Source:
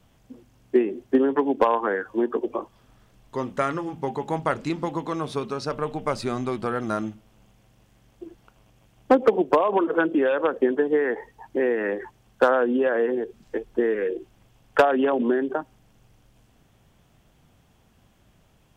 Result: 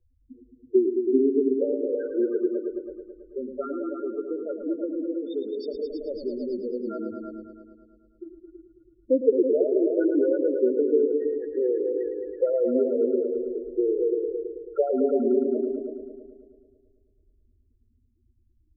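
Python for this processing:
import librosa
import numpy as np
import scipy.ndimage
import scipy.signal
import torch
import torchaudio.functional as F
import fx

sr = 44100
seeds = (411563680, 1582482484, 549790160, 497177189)

y = fx.fixed_phaser(x, sr, hz=370.0, stages=4)
y = fx.spec_topn(y, sr, count=4)
y = fx.echo_heads(y, sr, ms=109, heads='all three', feedback_pct=43, wet_db=-8.5)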